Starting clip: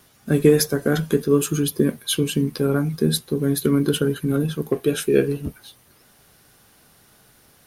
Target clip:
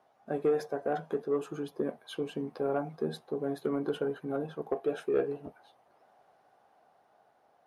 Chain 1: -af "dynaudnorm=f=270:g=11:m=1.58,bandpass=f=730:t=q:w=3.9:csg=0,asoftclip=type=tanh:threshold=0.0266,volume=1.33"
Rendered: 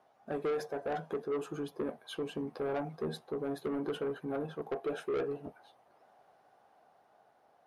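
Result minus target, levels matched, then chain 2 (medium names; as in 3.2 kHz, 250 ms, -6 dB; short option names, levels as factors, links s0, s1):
saturation: distortion +11 dB
-af "dynaudnorm=f=270:g=11:m=1.58,bandpass=f=730:t=q:w=3.9:csg=0,asoftclip=type=tanh:threshold=0.0891,volume=1.33"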